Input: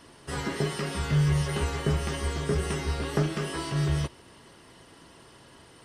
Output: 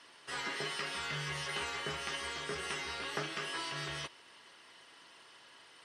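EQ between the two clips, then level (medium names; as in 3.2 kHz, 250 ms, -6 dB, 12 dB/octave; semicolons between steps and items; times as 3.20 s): band-pass filter 2.7 kHz, Q 0.64; 0.0 dB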